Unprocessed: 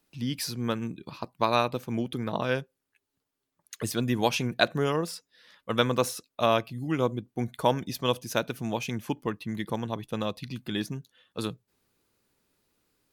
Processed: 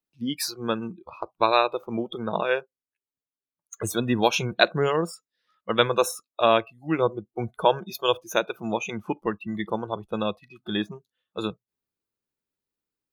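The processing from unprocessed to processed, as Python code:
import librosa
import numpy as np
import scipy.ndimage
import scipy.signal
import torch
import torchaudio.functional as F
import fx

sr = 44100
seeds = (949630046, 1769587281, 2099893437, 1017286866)

y = fx.noise_reduce_blind(x, sr, reduce_db=23)
y = y * librosa.db_to_amplitude(4.5)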